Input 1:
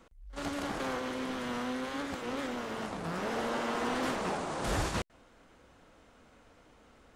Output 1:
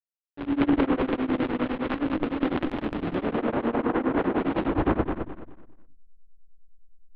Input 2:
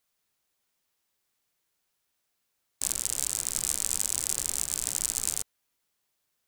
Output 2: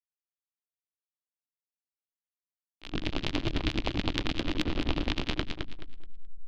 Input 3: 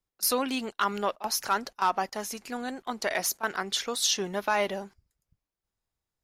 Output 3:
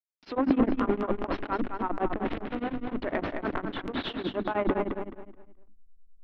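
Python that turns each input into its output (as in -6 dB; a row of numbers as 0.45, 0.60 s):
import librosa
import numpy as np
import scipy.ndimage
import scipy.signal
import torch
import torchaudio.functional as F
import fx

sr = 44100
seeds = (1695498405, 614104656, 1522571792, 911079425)

y = fx.delta_hold(x, sr, step_db=-30.5)
y = scipy.signal.sosfilt(scipy.signal.butter(6, 3600.0, 'lowpass', fs=sr, output='sos'), y)
y = fx.hum_notches(y, sr, base_hz=50, count=6)
y = fx.env_lowpass_down(y, sr, base_hz=1500.0, full_db=-29.5)
y = fx.peak_eq(y, sr, hz=300.0, db=14.5, octaves=0.56)
y = fx.transient(y, sr, attack_db=-10, sustain_db=11)
y = fx.echo_feedback(y, sr, ms=214, feedback_pct=30, wet_db=-6.0)
y = y * np.abs(np.cos(np.pi * 9.8 * np.arange(len(y)) / sr))
y = librosa.util.normalize(y) * 10.0 ** (-9 / 20.0)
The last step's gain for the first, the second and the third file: +6.0, +9.5, +2.0 dB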